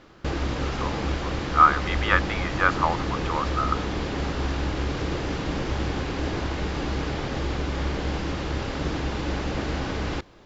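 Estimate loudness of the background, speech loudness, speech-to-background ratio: -28.5 LUFS, -24.5 LUFS, 4.0 dB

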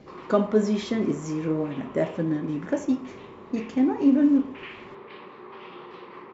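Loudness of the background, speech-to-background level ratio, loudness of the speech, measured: -44.0 LUFS, 19.0 dB, -25.0 LUFS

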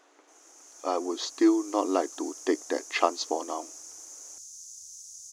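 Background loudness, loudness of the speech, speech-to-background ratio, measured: -43.0 LUFS, -28.5 LUFS, 14.5 dB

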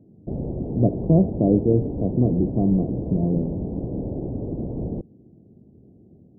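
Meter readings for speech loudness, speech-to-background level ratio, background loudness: -22.0 LUFS, 7.5 dB, -29.5 LUFS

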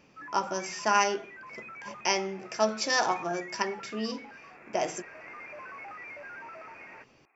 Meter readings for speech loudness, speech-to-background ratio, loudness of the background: -30.0 LUFS, 14.5 dB, -44.5 LUFS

